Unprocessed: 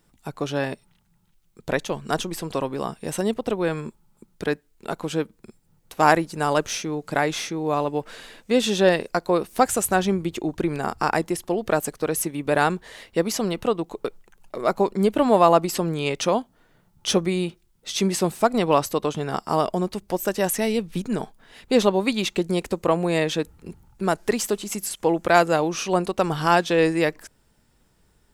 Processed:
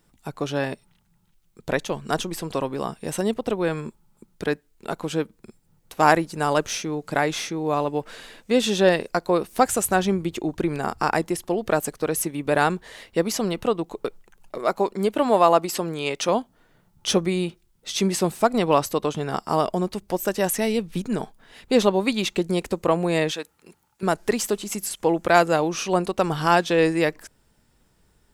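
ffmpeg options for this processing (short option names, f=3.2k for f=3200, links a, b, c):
-filter_complex "[0:a]asettb=1/sr,asplit=3[a][b][c];[a]atrim=end=14.584[d];[b]atrim=start=14.58:end=16.29,asetpts=PTS-STARTPTS,afade=t=in:d=0.004:c=qsin,afade=t=out:st=1.706:d=0.004:c=qsin,lowshelf=f=170:g=-11.5[e];[c]atrim=start=16.286[f];[d][e]acrossfade=d=0.004:c1=hsin:c2=qsin[g];[g][f]acrossfade=d=0.004:c1=qsin:c2=hsin,asettb=1/sr,asplit=3[h][i][j];[h]atrim=end=23.314[k];[i]atrim=start=23.31:end=24.03,asetpts=PTS-STARTPTS,afade=t=in:d=0.004:c=qsin,afade=t=out:st=0.716:d=0.004:c=qsin,highpass=f=1k:p=1[l];[j]atrim=start=24.026[m];[k][l]acrossfade=d=0.004:c1=hsin:c2=qsin[n];[n][m]acrossfade=d=0.004:c1=qsin:c2=hsin"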